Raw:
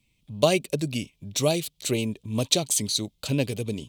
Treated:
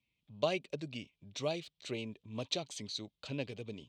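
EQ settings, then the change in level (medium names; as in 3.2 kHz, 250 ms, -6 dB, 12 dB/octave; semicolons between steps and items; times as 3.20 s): high-pass 51 Hz; distance through air 170 m; bass shelf 440 Hz -8.5 dB; -8.0 dB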